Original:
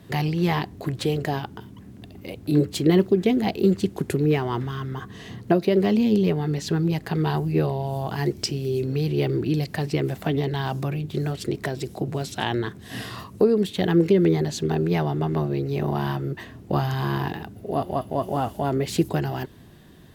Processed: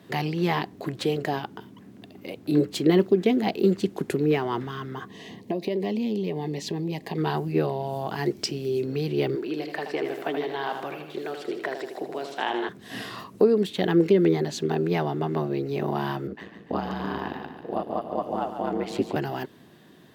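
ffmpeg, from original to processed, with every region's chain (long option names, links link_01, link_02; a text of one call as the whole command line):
ffmpeg -i in.wav -filter_complex "[0:a]asettb=1/sr,asplit=3[link_01][link_02][link_03];[link_01]atrim=end=5.084[link_04];[link_02]atrim=start=5.08:end=7.18,asetpts=PTS-STARTPTS,afade=type=in:duration=0.004:curve=qsin,afade=type=out:start_time=2.096:duration=0.004:curve=qsin,equalizer=frequency=120:width=5.4:gain=-5.5,acompressor=threshold=-22dB:ratio=5:attack=3.2:release=140:knee=1:detection=peak,asuperstop=centerf=1400:order=4:qfactor=2.1[link_05];[link_03]atrim=start=7.176[link_06];[link_04][link_05]acrossfade=duration=0.004:curve1=hsin:curve2=qsin[link_07];[link_07][link_06]acrossfade=duration=0.004:curve1=qsin:curve2=hsin,asettb=1/sr,asplit=3[link_08][link_09][link_10];[link_08]atrim=end=9.354[link_11];[link_09]atrim=start=9.35:end=12.69,asetpts=PTS-STARTPTS,afade=type=in:duration=0.004:curve=qsin,afade=type=out:start_time=3.336:duration=0.004:curve=qsin,highpass=390,acrossover=split=3200[link_12][link_13];[link_13]acompressor=threshold=-47dB:ratio=4:attack=1:release=60[link_14];[link_12][link_14]amix=inputs=2:normalize=0,aecho=1:1:79|158|237|316|395|474|553:0.473|0.26|0.143|0.0787|0.0433|0.0238|0.0131,atrim=end_sample=147294[link_15];[link_10]atrim=start=12.686[link_16];[link_11][link_15]acrossfade=duration=0.004:curve1=hsin:curve2=qsin[link_17];[link_17][link_16]acrossfade=duration=0.004:curve1=qsin:curve2=hsin,asettb=1/sr,asplit=3[link_18][link_19][link_20];[link_18]atrim=end=16.274[link_21];[link_19]atrim=start=16.27:end=19.16,asetpts=PTS-STARTPTS,afade=type=in:duration=0.004:curve=qsin,afade=type=out:start_time=2.886:duration=0.004:curve=qsin,lowpass=frequency=3800:poles=1,aeval=exprs='val(0)*sin(2*PI*55*n/s)':channel_layout=same,aecho=1:1:143|286|429|572|715|858:0.355|0.185|0.0959|0.0499|0.0259|0.0135,atrim=end_sample=127449[link_22];[link_20]atrim=start=19.156[link_23];[link_21][link_22]acrossfade=duration=0.004:curve1=hsin:curve2=qsin[link_24];[link_24][link_23]acrossfade=duration=0.004:curve1=qsin:curve2=hsin,highpass=200,equalizer=frequency=11000:width_type=o:width=1.5:gain=-5" out.wav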